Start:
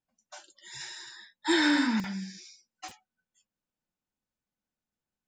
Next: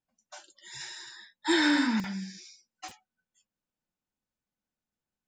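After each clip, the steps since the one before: no audible change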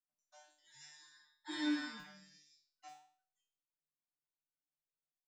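feedback comb 150 Hz, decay 0.48 s, harmonics all, mix 100%; flange 1.9 Hz, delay 2.8 ms, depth 2.8 ms, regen +90%; trim +1.5 dB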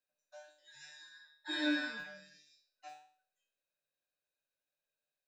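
small resonant body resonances 560/1600/2500/3800 Hz, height 17 dB, ringing for 25 ms; trim -1.5 dB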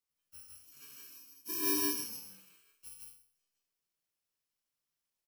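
bit-reversed sample order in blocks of 64 samples; loudspeakers at several distances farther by 21 m -10 dB, 54 m -1 dB

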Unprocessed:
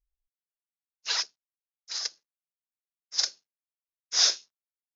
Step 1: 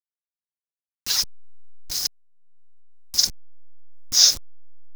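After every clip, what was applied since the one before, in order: send-on-delta sampling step -32 dBFS; tone controls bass +8 dB, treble +14 dB; upward compressor, threshold -30 dBFS; trim -2.5 dB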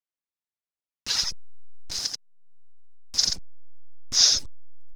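reverb removal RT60 0.69 s; distance through air 67 m; on a send: delay 85 ms -4.5 dB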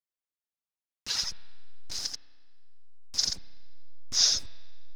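spring tank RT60 1.8 s, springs 32 ms, chirp 65 ms, DRR 15 dB; trim -5 dB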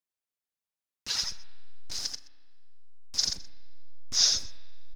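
delay 125 ms -20 dB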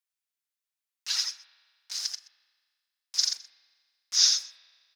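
high-pass 1.3 kHz 12 dB/octave; trim +2 dB

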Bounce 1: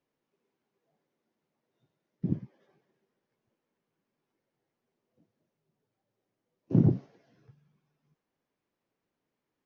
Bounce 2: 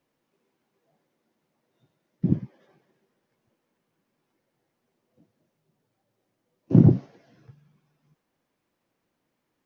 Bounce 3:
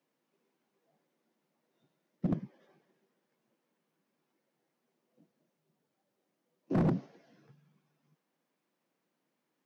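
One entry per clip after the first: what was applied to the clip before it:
band-stop 420 Hz, Q 12; trim +7.5 dB
steep high-pass 150 Hz 36 dB/octave; overload inside the chain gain 20 dB; trim -4.5 dB

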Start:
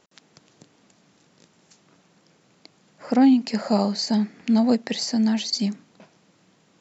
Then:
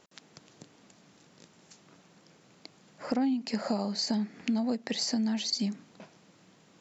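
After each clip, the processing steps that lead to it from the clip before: compression 6:1, threshold -27 dBFS, peak gain reduction 13 dB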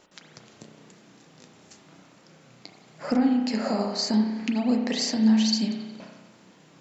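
flange 0.93 Hz, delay 3 ms, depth 7.4 ms, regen +61%; spring tank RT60 1.3 s, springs 32 ms, chirp 60 ms, DRR 2 dB; trim +8 dB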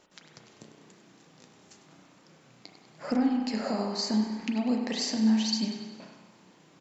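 feedback delay 99 ms, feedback 55%, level -12 dB; trim -4 dB

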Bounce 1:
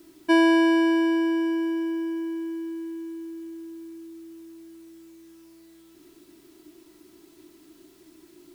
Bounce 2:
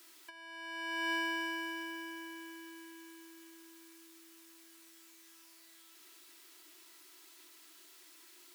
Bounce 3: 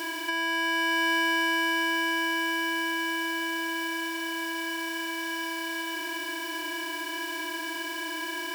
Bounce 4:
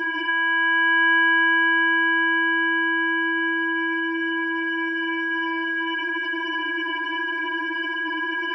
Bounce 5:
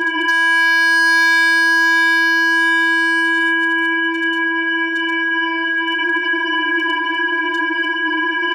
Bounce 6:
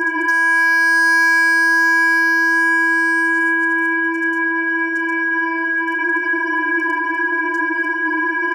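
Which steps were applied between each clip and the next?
high-pass 1.2 kHz 12 dB/octave; compressor with a negative ratio -36 dBFS, ratio -0.5; trim -1.5 dB
spectral levelling over time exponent 0.2; trim +8.5 dB
spectral contrast enhancement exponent 2.6; reverse echo 679 ms -21 dB; trim +8 dB
hard clipper -18.5 dBFS, distortion -14 dB; doubling 32 ms -9.5 dB; trim +7.5 dB
Butterworth band-stop 3.4 kHz, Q 1.2

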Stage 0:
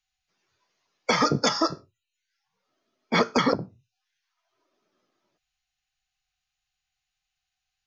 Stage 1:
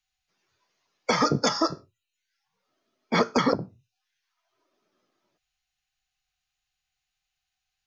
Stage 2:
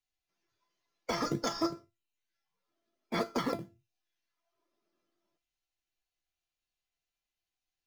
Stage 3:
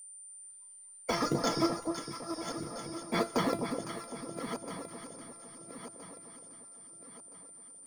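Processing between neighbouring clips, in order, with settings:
dynamic bell 2.8 kHz, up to -4 dB, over -39 dBFS, Q 1.1
in parallel at -10 dB: decimation with a swept rate 24×, swing 60% 2.6 Hz; on the sum: feedback comb 340 Hz, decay 0.23 s, harmonics all, mix 80%
backward echo that repeats 660 ms, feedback 60%, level -9.5 dB; whistle 9.1 kHz -49 dBFS; echo whose repeats swap between lows and highs 254 ms, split 980 Hz, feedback 63%, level -5 dB; trim +2 dB

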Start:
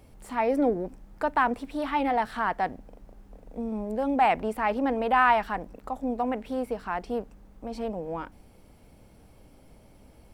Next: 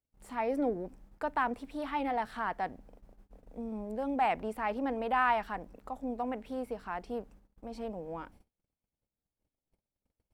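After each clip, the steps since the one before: gate -48 dBFS, range -34 dB; trim -7 dB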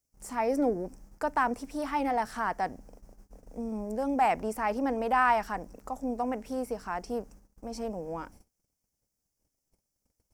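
resonant high shelf 4.6 kHz +7 dB, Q 3; trim +4 dB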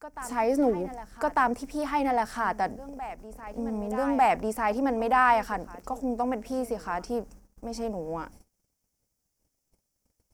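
reverse echo 1198 ms -15.5 dB; trim +3 dB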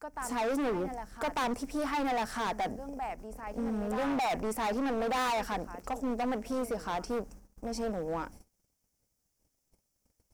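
overload inside the chain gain 28.5 dB

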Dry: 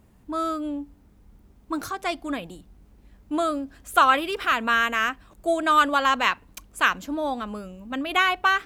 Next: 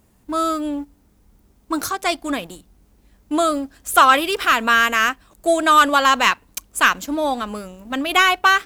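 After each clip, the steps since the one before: tone controls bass -3 dB, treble +7 dB; waveshaping leveller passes 1; trim +2.5 dB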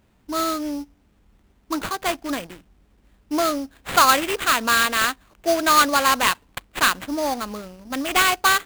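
sample-rate reducer 5.5 kHz, jitter 20%; trim -3 dB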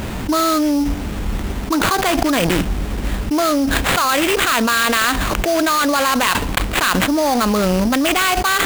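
level flattener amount 100%; trim -4 dB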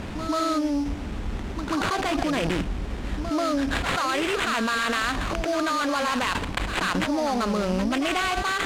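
distance through air 59 m; on a send: reverse echo 137 ms -8 dB; on the sum: trim -8.5 dB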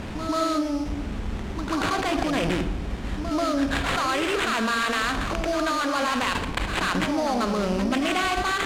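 reverberation RT60 0.90 s, pre-delay 35 ms, DRR 9 dB

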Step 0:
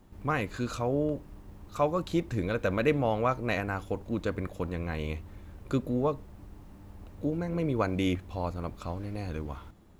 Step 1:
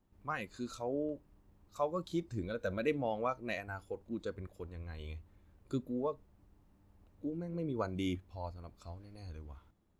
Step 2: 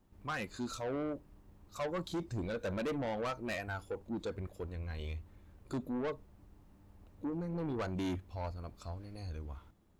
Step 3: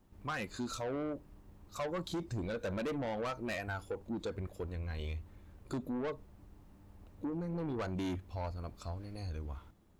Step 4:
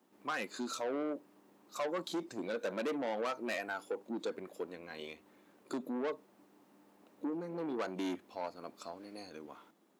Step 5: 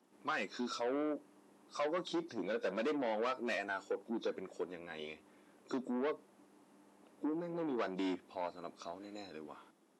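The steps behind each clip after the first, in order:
spectral noise reduction 10 dB; trim -7 dB
saturation -38 dBFS, distortion -7 dB; trim +5.5 dB
compression, threshold -37 dBFS, peak gain reduction 3.5 dB; trim +2.5 dB
high-pass 240 Hz 24 dB/octave; trim +1.5 dB
knee-point frequency compression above 3.4 kHz 1.5:1

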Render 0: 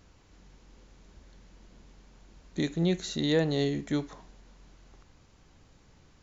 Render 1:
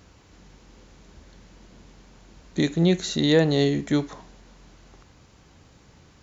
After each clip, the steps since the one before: high-pass 52 Hz; trim +7 dB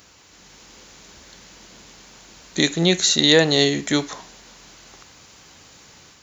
tilt EQ +3 dB/octave; level rider gain up to 4 dB; trim +3 dB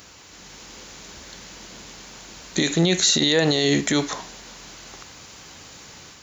peak limiter -13 dBFS, peak gain reduction 11.5 dB; trim +4.5 dB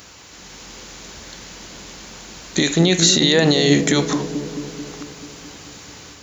feedback echo behind a low-pass 219 ms, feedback 68%, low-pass 430 Hz, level -6 dB; trim +3.5 dB

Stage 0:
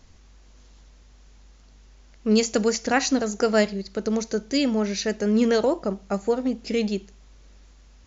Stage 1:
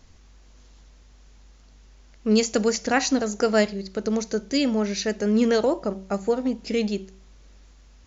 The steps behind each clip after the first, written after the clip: de-hum 190.9 Hz, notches 5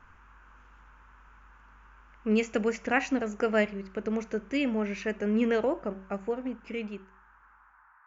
fade out at the end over 2.40 s; band noise 860–1600 Hz -55 dBFS; resonant high shelf 3.3 kHz -9 dB, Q 3; trim -6 dB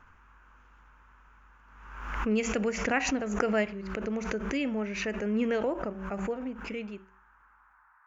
swell ahead of each attack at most 49 dB/s; trim -2.5 dB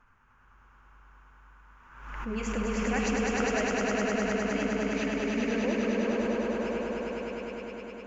flange 1.9 Hz, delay 4 ms, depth 8.8 ms, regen -27%; echo with a slow build-up 102 ms, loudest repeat 5, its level -3 dB; trim -2.5 dB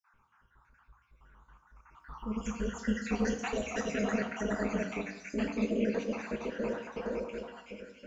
random holes in the spectrogram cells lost 66%; flange 1.1 Hz, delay 0.5 ms, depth 9.8 ms, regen +57%; on a send at -6.5 dB: reverberation RT60 1.1 s, pre-delay 3 ms; on the sum: trim +2 dB

